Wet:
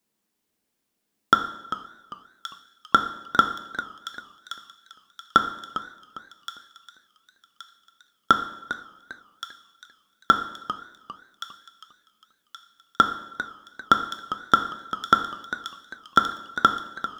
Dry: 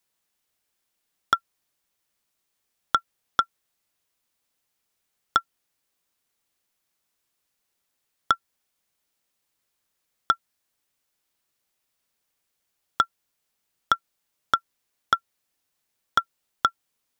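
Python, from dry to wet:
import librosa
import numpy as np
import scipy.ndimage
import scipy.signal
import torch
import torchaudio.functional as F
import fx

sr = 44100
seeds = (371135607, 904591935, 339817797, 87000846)

p1 = fx.peak_eq(x, sr, hz=250.0, db=14.5, octaves=1.8)
p2 = fx.level_steps(p1, sr, step_db=18)
p3 = p1 + F.gain(torch.from_numpy(p2), 1.0).numpy()
p4 = fx.dynamic_eq(p3, sr, hz=2500.0, q=0.72, threshold_db=-28.0, ratio=4.0, max_db=3)
p5 = p4 + fx.echo_wet_highpass(p4, sr, ms=1123, feedback_pct=41, hz=3400.0, wet_db=-5.0, dry=0)
p6 = fx.rev_double_slope(p5, sr, seeds[0], early_s=0.74, late_s=2.1, knee_db=-17, drr_db=6.0)
p7 = fx.echo_warbled(p6, sr, ms=399, feedback_pct=33, rate_hz=2.8, cents=130, wet_db=-13.0)
y = F.gain(torch.from_numpy(p7), -4.5).numpy()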